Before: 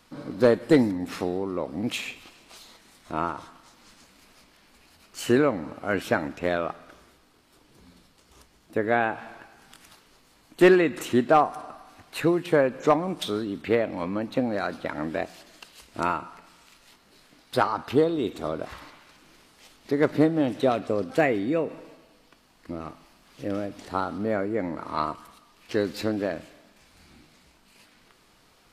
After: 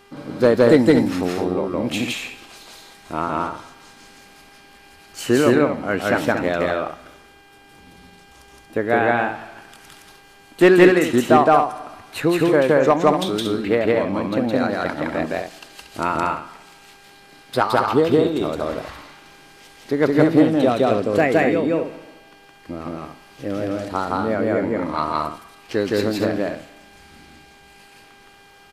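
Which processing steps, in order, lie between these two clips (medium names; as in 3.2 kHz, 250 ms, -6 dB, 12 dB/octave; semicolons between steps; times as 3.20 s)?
mains buzz 400 Hz, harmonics 8, -56 dBFS -4 dB/octave; loudspeakers at several distances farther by 57 m 0 dB, 80 m -7 dB; trim +3.5 dB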